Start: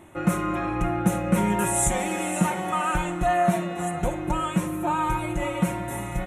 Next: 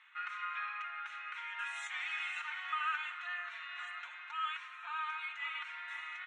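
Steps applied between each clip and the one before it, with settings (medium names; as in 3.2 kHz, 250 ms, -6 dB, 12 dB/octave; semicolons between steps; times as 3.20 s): low-pass 3.9 kHz 24 dB/octave; compression, threshold -24 dBFS, peak gain reduction 9 dB; steep high-pass 1.3 kHz 36 dB/octave; trim -1.5 dB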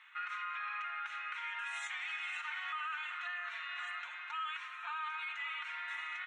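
peak limiter -35 dBFS, peak gain reduction 10.5 dB; trim +3 dB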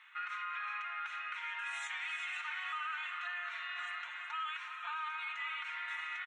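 delay 370 ms -10 dB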